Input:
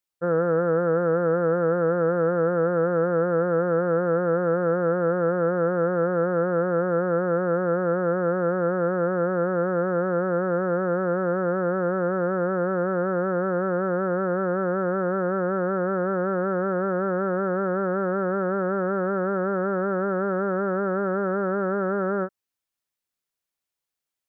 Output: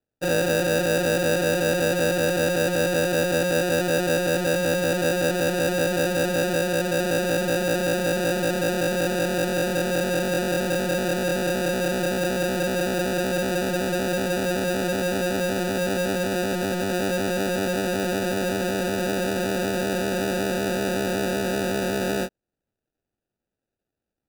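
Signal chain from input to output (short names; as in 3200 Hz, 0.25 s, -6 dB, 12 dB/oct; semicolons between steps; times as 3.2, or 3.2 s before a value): 6.57–6.99 LPF 1100 Hz; sample-and-hold 41×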